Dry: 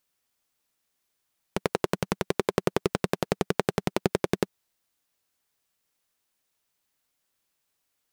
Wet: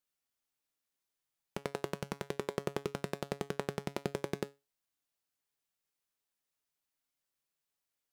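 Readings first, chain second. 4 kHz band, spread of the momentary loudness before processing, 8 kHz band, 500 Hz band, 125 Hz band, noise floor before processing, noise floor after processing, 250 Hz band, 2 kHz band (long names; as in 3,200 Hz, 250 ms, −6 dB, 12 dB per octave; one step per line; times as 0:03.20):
−10.5 dB, 4 LU, −10.5 dB, −10.5 dB, −10.0 dB, −78 dBFS, below −85 dBFS, −11.0 dB, −10.5 dB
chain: tuned comb filter 140 Hz, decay 0.24 s, harmonics all, mix 60%
level −5 dB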